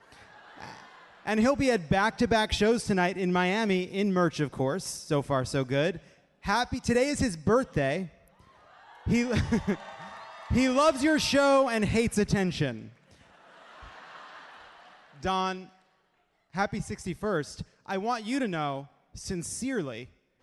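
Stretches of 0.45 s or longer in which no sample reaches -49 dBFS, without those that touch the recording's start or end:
15.69–16.54 s

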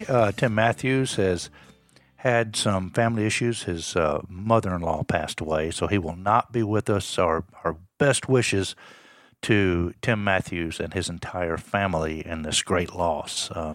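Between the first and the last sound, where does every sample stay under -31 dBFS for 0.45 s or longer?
1.46–2.25 s
8.72–9.43 s

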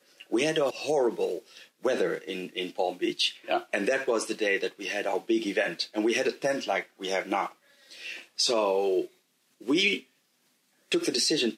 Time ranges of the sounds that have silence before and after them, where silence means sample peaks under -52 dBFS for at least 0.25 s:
9.61–10.04 s

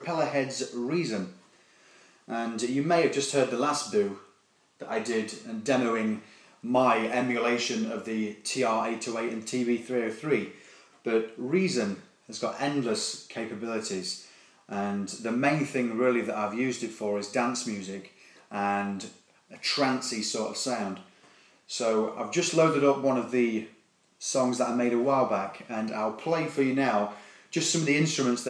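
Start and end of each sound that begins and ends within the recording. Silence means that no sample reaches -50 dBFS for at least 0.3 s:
4.80–23.74 s

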